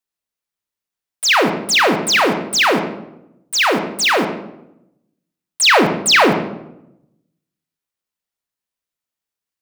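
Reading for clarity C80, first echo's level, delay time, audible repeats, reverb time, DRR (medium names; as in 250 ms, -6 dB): 9.5 dB, no echo, no echo, no echo, 0.85 s, 4.0 dB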